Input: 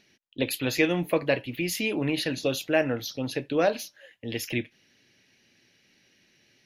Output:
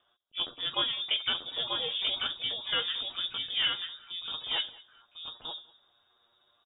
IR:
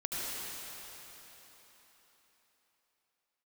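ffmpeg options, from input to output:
-filter_complex "[0:a]bandreject=f=60:t=h:w=6,bandreject=f=120:t=h:w=6,bandreject=f=180:t=h:w=6,bandreject=f=240:t=h:w=6,bandreject=f=300:t=h:w=6,bandreject=f=360:t=h:w=6,bandreject=f=420:t=h:w=6,bandreject=f=480:t=h:w=6,asplit=2[a][b];[b]asetrate=88200,aresample=44100,atempo=0.5,volume=-16dB[c];[a][c]amix=inputs=2:normalize=0,asplit=2[d][e];[e]adelay=12,volume=-8dB[f];[d][f]amix=inputs=2:normalize=0,asetrate=60591,aresample=44100,atempo=0.727827,asplit=2[g][h];[h]aecho=0:1:937:0.668[i];[g][i]amix=inputs=2:normalize=0,asubboost=boost=7:cutoff=140,asplit=2[j][k];[k]aecho=0:1:200|400:0.075|0.0165[l];[j][l]amix=inputs=2:normalize=0,lowpass=f=3.2k:t=q:w=0.5098,lowpass=f=3.2k:t=q:w=0.6013,lowpass=f=3.2k:t=q:w=0.9,lowpass=f=3.2k:t=q:w=2.563,afreqshift=-3800,volume=-5.5dB"

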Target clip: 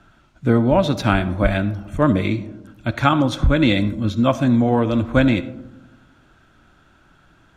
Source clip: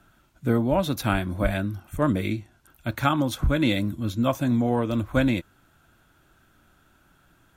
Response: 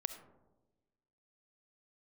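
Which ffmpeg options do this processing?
-filter_complex "[0:a]lowpass=8.6k,asplit=2[a][b];[1:a]atrim=start_sample=2205,lowpass=6.9k[c];[b][c]afir=irnorm=-1:irlink=0,volume=1.5dB[d];[a][d]amix=inputs=2:normalize=0"

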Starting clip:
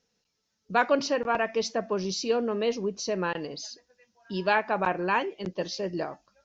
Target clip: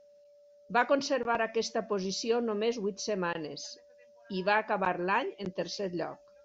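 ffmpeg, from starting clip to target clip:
-af "aeval=exprs='val(0)+0.00224*sin(2*PI*580*n/s)':c=same,volume=-3dB"

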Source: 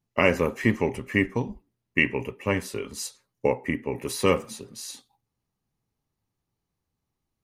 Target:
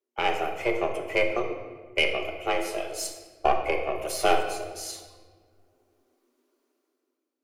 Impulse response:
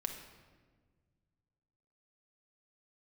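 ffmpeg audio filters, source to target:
-filter_complex "[0:a]dynaudnorm=f=170:g=9:m=15dB,afreqshift=240,aeval=exprs='0.944*(cos(1*acos(clip(val(0)/0.944,-1,1)))-cos(1*PI/2))+0.0596*(cos(6*acos(clip(val(0)/0.944,-1,1)))-cos(6*PI/2))':c=same[a];[1:a]atrim=start_sample=2205[b];[a][b]afir=irnorm=-1:irlink=0,volume=-6dB"

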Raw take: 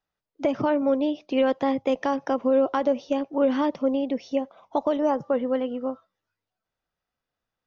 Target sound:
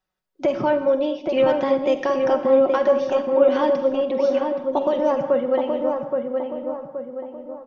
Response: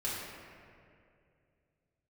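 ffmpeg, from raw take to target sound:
-filter_complex "[0:a]aecho=1:1:5.4:0.56,asplit=2[a][b];[b]adelay=823,lowpass=f=1.5k:p=1,volume=-3.5dB,asplit=2[c][d];[d]adelay=823,lowpass=f=1.5k:p=1,volume=0.47,asplit=2[e][f];[f]adelay=823,lowpass=f=1.5k:p=1,volume=0.47,asplit=2[g][h];[h]adelay=823,lowpass=f=1.5k:p=1,volume=0.47,asplit=2[i][j];[j]adelay=823,lowpass=f=1.5k:p=1,volume=0.47,asplit=2[k][l];[l]adelay=823,lowpass=f=1.5k:p=1,volume=0.47[m];[a][c][e][g][i][k][m]amix=inputs=7:normalize=0,asplit=2[n][o];[1:a]atrim=start_sample=2205,afade=t=out:st=0.25:d=0.01,atrim=end_sample=11466,adelay=45[p];[o][p]afir=irnorm=-1:irlink=0,volume=-12.5dB[q];[n][q]amix=inputs=2:normalize=0,volume=1.5dB"

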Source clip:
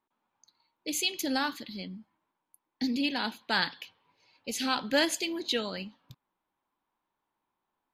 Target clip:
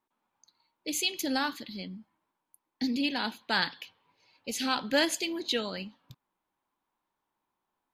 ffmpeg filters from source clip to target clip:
-ar 48000 -c:a aac -b:a 192k

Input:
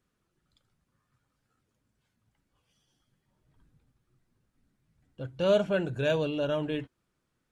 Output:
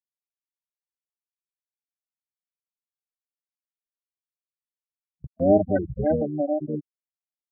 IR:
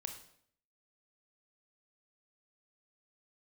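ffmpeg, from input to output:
-filter_complex "[0:a]aecho=1:1:110|220|330:0.112|0.0449|0.018,afftfilt=real='re*gte(hypot(re,im),0.2)':imag='im*gte(hypot(re,im),0.2)':win_size=1024:overlap=0.75,asplit=3[a][b][c];[b]asetrate=22050,aresample=44100,atempo=2,volume=-4dB[d];[c]asetrate=55563,aresample=44100,atempo=0.793701,volume=-12dB[e];[a][d][e]amix=inputs=3:normalize=0,agate=range=-23dB:threshold=-42dB:ratio=16:detection=peak,volume=4.5dB"

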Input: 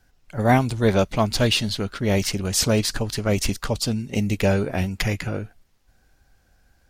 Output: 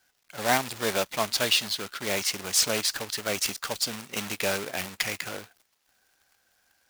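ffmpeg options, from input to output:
-af "acrusher=bits=2:mode=log:mix=0:aa=0.000001,highpass=f=1.1k:p=1,volume=-1dB"

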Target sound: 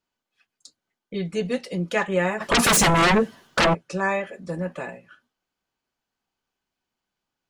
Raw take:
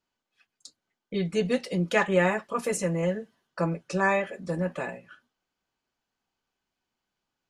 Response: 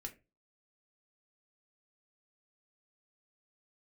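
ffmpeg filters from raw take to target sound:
-filter_complex "[0:a]asplit=3[a][b][c];[a]afade=t=out:st=2.4:d=0.02[d];[b]aeval=exprs='0.2*sin(PI/2*7.08*val(0)/0.2)':c=same,afade=t=in:st=2.4:d=0.02,afade=t=out:st=3.73:d=0.02[e];[c]afade=t=in:st=3.73:d=0.02[f];[d][e][f]amix=inputs=3:normalize=0"

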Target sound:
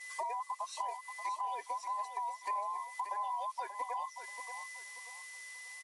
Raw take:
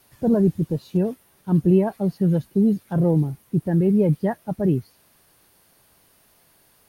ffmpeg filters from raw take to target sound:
-filter_complex "[0:a]afftfilt=real='real(if(between(b,1,1008),(2*floor((b-1)/48)+1)*48-b,b),0)':imag='imag(if(between(b,1,1008),(2*floor((b-1)/48)+1)*48-b,b),0)*if(between(b,1,1008),-1,1)':win_size=2048:overlap=0.75,highpass=f=310:w=0.5412,highpass=f=310:w=1.3066,aeval=exprs='val(0)+0.00501*sin(2*PI*1700*n/s)':c=same,aderivative,alimiter=level_in=9dB:limit=-24dB:level=0:latency=1:release=17,volume=-9dB,acompressor=threshold=-50dB:ratio=16,asetrate=52038,aresample=44100,agate=range=-33dB:threshold=-55dB:ratio=3:detection=peak,asplit=2[a][b];[b]aecho=0:1:583|1166|1749|2332:0.355|0.114|0.0363|0.0116[c];[a][c]amix=inputs=2:normalize=0,aresample=22050,aresample=44100,volume=15dB"

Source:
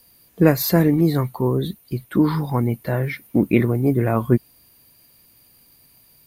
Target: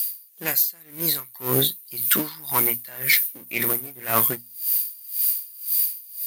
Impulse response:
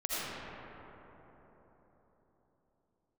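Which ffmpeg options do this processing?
-filter_complex "[0:a]aeval=exprs='if(lt(val(0),0),0.447*val(0),val(0))':c=same,highpass=96,aemphasis=mode=production:type=50kf,crystalizer=i=8.5:c=0,lowpass=f=2.6k:p=1,tiltshelf=f=1.1k:g=-7.5,dynaudnorm=f=130:g=5:m=3dB,asplit=2[a][b];[b]alimiter=limit=-9.5dB:level=0:latency=1:release=143,volume=0.5dB[c];[a][c]amix=inputs=2:normalize=0,flanger=delay=2.7:depth=6.5:regen=78:speed=0.4:shape=triangular,bandreject=f=60:t=h:w=6,bandreject=f=120:t=h:w=6,bandreject=f=180:t=h:w=6,bandreject=f=240:t=h:w=6,aeval=exprs='val(0)*pow(10,-24*(0.5-0.5*cos(2*PI*1.9*n/s))/20)':c=same,volume=2.5dB"

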